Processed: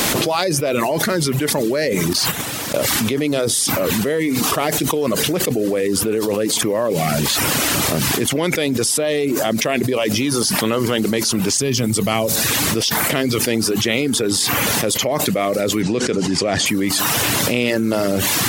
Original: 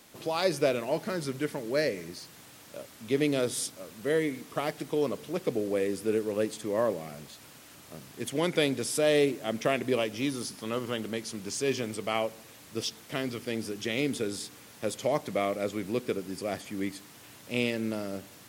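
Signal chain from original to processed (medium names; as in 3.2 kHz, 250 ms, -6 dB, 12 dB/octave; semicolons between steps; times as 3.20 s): 15.82–16.66 s: low-pass 7.7 kHz 24 dB/octave; reverb removal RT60 0.55 s; 2.13–2.77 s: gate -50 dBFS, range -15 dB; 11.58–12.36 s: tone controls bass +12 dB, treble +8 dB; level flattener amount 100%; trim +3 dB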